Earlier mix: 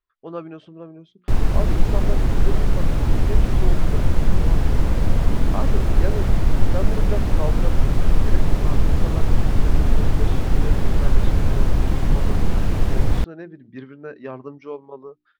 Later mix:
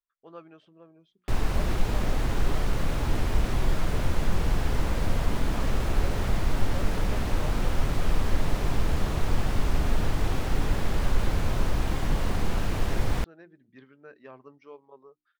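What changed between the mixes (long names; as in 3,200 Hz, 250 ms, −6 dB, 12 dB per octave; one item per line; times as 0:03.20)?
speech −9.5 dB
master: add low-shelf EQ 480 Hz −8.5 dB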